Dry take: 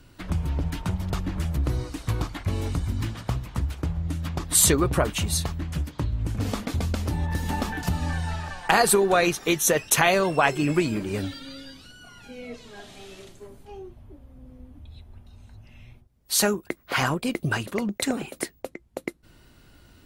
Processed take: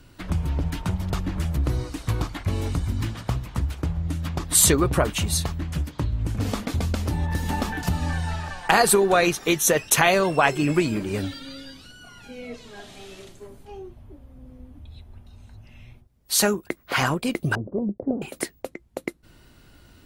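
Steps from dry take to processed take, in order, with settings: 17.55–18.22 s: inverse Chebyshev low-pass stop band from 2.9 kHz, stop band 70 dB; trim +1.5 dB

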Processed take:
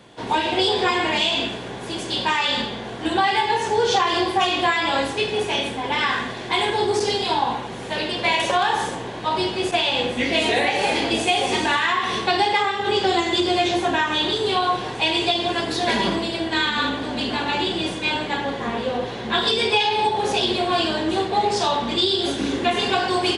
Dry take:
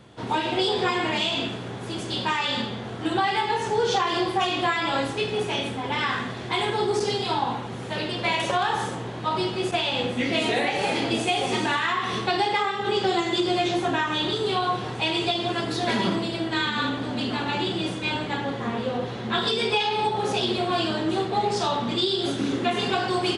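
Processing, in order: octave divider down 2 oct, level -4 dB; high-pass 320 Hz 6 dB/octave; band-stop 1.3 kHz, Q 8.5; trim +5 dB

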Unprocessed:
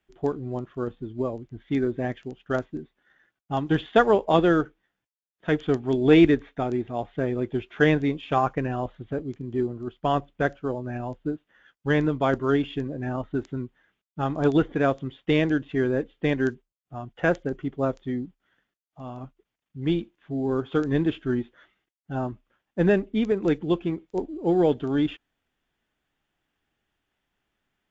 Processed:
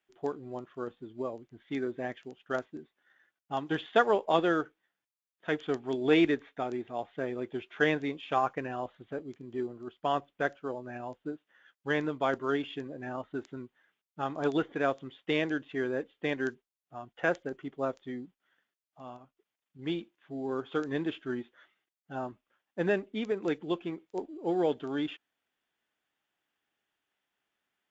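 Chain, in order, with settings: high-pass 490 Hz 6 dB/octave; 19.16–19.79 s: compression 6:1, threshold -48 dBFS, peak gain reduction 8 dB; trim -3.5 dB

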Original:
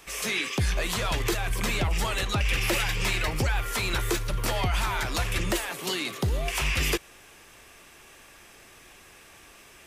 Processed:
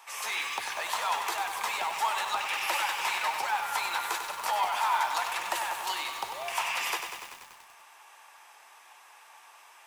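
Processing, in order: resonant high-pass 890 Hz, resonance Q 4.9; bit-crushed delay 96 ms, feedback 80%, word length 7-bit, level -7 dB; trim -5.5 dB

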